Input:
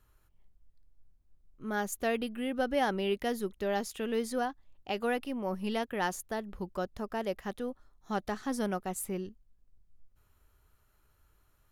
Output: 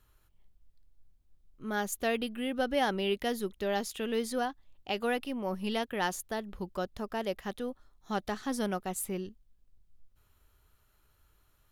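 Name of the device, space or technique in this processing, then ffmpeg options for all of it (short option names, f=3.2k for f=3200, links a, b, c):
presence and air boost: -af "equalizer=f=3.5k:t=o:w=0.92:g=4.5,highshelf=f=9.2k:g=3"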